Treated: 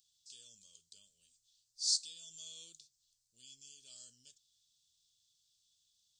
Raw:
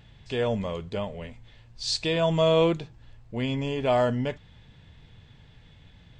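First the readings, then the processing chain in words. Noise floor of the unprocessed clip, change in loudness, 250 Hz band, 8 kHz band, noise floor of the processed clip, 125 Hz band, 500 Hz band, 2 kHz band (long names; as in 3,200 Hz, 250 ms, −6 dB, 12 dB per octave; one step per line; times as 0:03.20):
−54 dBFS, −10.0 dB, below −40 dB, +2.5 dB, −80 dBFS, below −40 dB, below −40 dB, below −35 dB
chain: inverse Chebyshev high-pass filter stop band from 2,200 Hz, stop band 50 dB
level +3.5 dB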